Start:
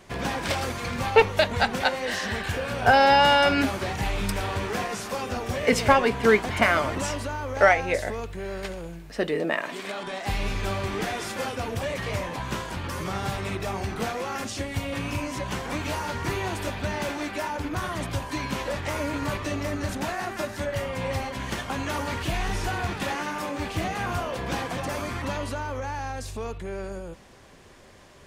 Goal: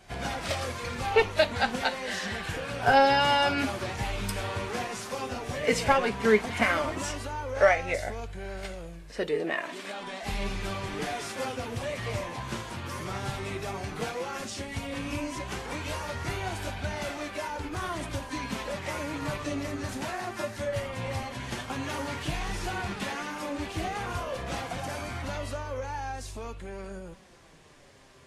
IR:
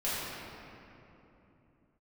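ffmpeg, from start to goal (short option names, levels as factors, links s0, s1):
-af "flanger=delay=1.3:depth=7.4:regen=48:speed=0.12:shape=sinusoidal" -ar 32000 -c:a libvorbis -b:a 32k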